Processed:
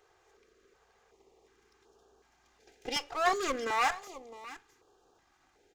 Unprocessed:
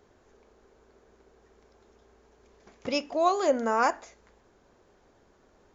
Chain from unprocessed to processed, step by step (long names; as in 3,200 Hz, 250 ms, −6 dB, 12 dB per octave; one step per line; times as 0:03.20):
lower of the sound and its delayed copy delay 2.5 ms
low-shelf EQ 230 Hz −11.5 dB
single-tap delay 660 ms −16 dB
notch on a step sequencer 2.7 Hz 240–2,100 Hz